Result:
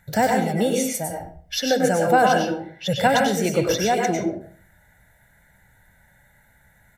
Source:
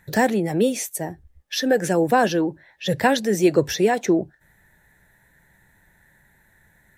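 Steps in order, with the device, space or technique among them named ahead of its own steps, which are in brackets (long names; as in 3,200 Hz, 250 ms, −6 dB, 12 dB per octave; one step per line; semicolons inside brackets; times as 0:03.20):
microphone above a desk (comb filter 1.4 ms, depth 61%; convolution reverb RT60 0.45 s, pre-delay 93 ms, DRR −0.5 dB)
level −2 dB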